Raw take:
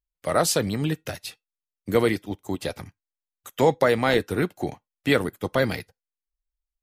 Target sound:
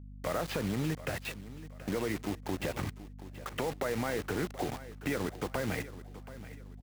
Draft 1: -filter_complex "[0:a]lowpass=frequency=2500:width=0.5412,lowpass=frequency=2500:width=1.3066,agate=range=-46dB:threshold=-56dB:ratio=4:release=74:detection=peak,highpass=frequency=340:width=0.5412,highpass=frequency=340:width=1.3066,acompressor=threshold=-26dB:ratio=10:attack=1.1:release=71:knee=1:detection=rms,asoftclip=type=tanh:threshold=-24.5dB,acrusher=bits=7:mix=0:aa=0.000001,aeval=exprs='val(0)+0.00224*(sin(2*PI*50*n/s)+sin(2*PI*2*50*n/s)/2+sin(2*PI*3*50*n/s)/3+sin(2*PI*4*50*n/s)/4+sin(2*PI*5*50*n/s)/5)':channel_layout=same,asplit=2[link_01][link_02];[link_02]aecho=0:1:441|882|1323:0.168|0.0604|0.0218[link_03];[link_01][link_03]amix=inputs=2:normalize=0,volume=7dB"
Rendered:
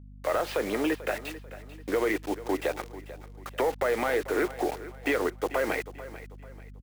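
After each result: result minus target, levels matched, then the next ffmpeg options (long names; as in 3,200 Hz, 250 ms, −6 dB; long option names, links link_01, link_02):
downward compressor: peak gain reduction −9.5 dB; echo 287 ms early; 250 Hz band −3.0 dB
-filter_complex "[0:a]lowpass=frequency=2500:width=0.5412,lowpass=frequency=2500:width=1.3066,agate=range=-46dB:threshold=-56dB:ratio=4:release=74:detection=peak,highpass=frequency=340:width=0.5412,highpass=frequency=340:width=1.3066,acompressor=threshold=-34.5dB:ratio=10:attack=1.1:release=71:knee=1:detection=rms,asoftclip=type=tanh:threshold=-24.5dB,acrusher=bits=7:mix=0:aa=0.000001,aeval=exprs='val(0)+0.00224*(sin(2*PI*50*n/s)+sin(2*PI*2*50*n/s)/2+sin(2*PI*3*50*n/s)/3+sin(2*PI*4*50*n/s)/4+sin(2*PI*5*50*n/s)/5)':channel_layout=same,asplit=2[link_01][link_02];[link_02]aecho=0:1:441|882|1323:0.168|0.0604|0.0218[link_03];[link_01][link_03]amix=inputs=2:normalize=0,volume=7dB"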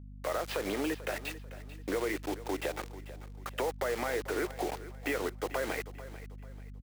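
echo 287 ms early; 250 Hz band −3.0 dB
-filter_complex "[0:a]lowpass=frequency=2500:width=0.5412,lowpass=frequency=2500:width=1.3066,agate=range=-46dB:threshold=-56dB:ratio=4:release=74:detection=peak,highpass=frequency=340:width=0.5412,highpass=frequency=340:width=1.3066,acompressor=threshold=-34.5dB:ratio=10:attack=1.1:release=71:knee=1:detection=rms,asoftclip=type=tanh:threshold=-24.5dB,acrusher=bits=7:mix=0:aa=0.000001,aeval=exprs='val(0)+0.00224*(sin(2*PI*50*n/s)+sin(2*PI*2*50*n/s)/2+sin(2*PI*3*50*n/s)/3+sin(2*PI*4*50*n/s)/4+sin(2*PI*5*50*n/s)/5)':channel_layout=same,asplit=2[link_01][link_02];[link_02]aecho=0:1:728|1456|2184:0.168|0.0604|0.0218[link_03];[link_01][link_03]amix=inputs=2:normalize=0,volume=7dB"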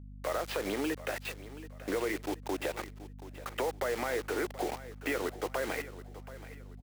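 250 Hz band −2.5 dB
-filter_complex "[0:a]lowpass=frequency=2500:width=0.5412,lowpass=frequency=2500:width=1.3066,agate=range=-46dB:threshold=-56dB:ratio=4:release=74:detection=peak,acompressor=threshold=-34.5dB:ratio=10:attack=1.1:release=71:knee=1:detection=rms,asoftclip=type=tanh:threshold=-24.5dB,acrusher=bits=7:mix=0:aa=0.000001,aeval=exprs='val(0)+0.00224*(sin(2*PI*50*n/s)+sin(2*PI*2*50*n/s)/2+sin(2*PI*3*50*n/s)/3+sin(2*PI*4*50*n/s)/4+sin(2*PI*5*50*n/s)/5)':channel_layout=same,asplit=2[link_01][link_02];[link_02]aecho=0:1:728|1456|2184:0.168|0.0604|0.0218[link_03];[link_01][link_03]amix=inputs=2:normalize=0,volume=7dB"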